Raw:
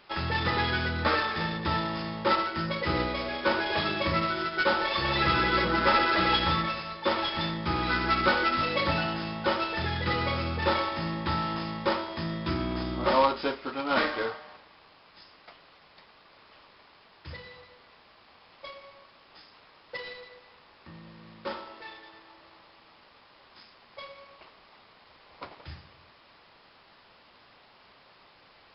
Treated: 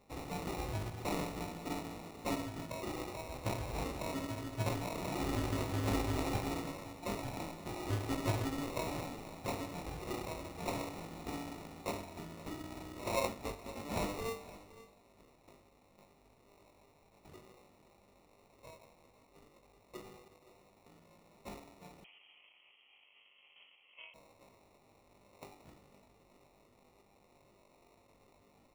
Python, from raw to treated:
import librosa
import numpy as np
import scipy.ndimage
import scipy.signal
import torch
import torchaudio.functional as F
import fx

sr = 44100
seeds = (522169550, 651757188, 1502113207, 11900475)

y = fx.low_shelf(x, sr, hz=400.0, db=-11.0)
y = fx.comb_fb(y, sr, f0_hz=150.0, decay_s=0.33, harmonics='all', damping=0.0, mix_pct=90)
y = fx.sample_hold(y, sr, seeds[0], rate_hz=1600.0, jitter_pct=0)
y = y + 10.0 ** (-17.5 / 20.0) * np.pad(y, (int(516 * sr / 1000.0), 0))[:len(y)]
y = fx.freq_invert(y, sr, carrier_hz=3200, at=(22.04, 24.14))
y = y * librosa.db_to_amplitude(3.0)